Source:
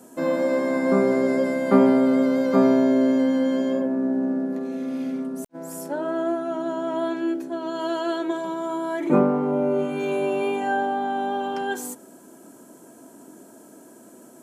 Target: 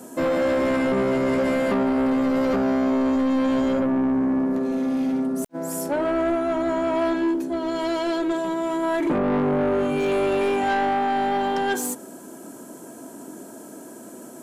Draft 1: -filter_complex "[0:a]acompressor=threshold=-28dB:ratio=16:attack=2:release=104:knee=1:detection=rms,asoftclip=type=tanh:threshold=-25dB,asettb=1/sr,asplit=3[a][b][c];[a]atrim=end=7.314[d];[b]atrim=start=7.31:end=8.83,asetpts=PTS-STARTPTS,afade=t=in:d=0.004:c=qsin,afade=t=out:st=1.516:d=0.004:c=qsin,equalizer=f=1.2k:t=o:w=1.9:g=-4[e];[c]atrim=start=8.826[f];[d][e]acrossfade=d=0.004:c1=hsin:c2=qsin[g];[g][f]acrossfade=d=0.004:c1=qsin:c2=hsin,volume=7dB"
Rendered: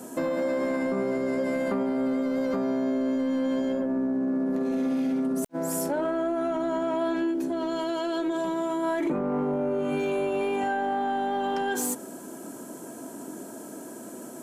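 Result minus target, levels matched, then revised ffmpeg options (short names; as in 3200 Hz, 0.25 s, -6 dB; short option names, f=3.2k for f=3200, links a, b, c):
compressor: peak gain reduction +10 dB
-filter_complex "[0:a]acompressor=threshold=-17.5dB:ratio=16:attack=2:release=104:knee=1:detection=rms,asoftclip=type=tanh:threshold=-25dB,asettb=1/sr,asplit=3[a][b][c];[a]atrim=end=7.314[d];[b]atrim=start=7.31:end=8.83,asetpts=PTS-STARTPTS,afade=t=in:d=0.004:c=qsin,afade=t=out:st=1.516:d=0.004:c=qsin,equalizer=f=1.2k:t=o:w=1.9:g=-4[e];[c]atrim=start=8.826[f];[d][e]acrossfade=d=0.004:c1=hsin:c2=qsin[g];[g][f]acrossfade=d=0.004:c1=qsin:c2=hsin,volume=7dB"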